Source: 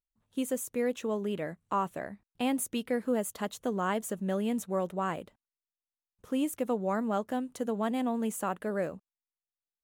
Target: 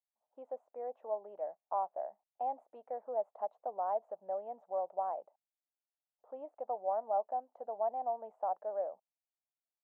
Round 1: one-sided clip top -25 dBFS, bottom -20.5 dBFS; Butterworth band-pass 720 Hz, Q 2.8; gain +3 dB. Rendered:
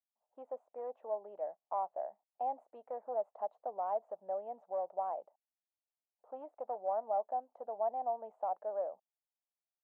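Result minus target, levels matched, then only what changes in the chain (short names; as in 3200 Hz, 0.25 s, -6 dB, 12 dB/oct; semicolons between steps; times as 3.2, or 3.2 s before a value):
one-sided clip: distortion +10 dB
change: one-sided clip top -14.5 dBFS, bottom -20.5 dBFS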